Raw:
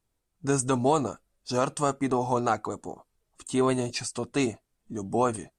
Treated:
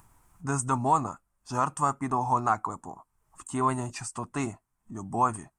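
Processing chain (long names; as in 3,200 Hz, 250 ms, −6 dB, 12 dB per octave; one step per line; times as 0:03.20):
upward compression, threshold −40 dBFS
octave-band graphic EQ 125/500/1,000/4,000/8,000 Hz +3/−11/+12/−12/+3 dB
level −3 dB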